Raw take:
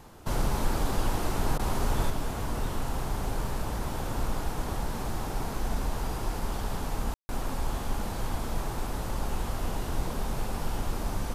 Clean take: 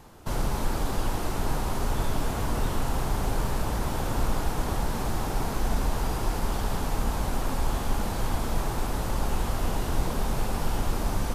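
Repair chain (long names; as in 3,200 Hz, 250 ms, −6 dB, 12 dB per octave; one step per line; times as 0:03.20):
ambience match 0:07.14–0:07.29
repair the gap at 0:01.58, 12 ms
level 0 dB, from 0:02.10 +4 dB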